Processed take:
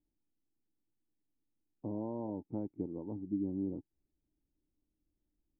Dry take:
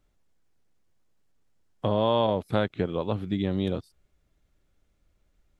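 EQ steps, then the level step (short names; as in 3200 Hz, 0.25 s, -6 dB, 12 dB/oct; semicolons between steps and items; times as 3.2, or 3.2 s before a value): vocal tract filter u; air absorption 470 m; notch 830 Hz, Q 22; -1.5 dB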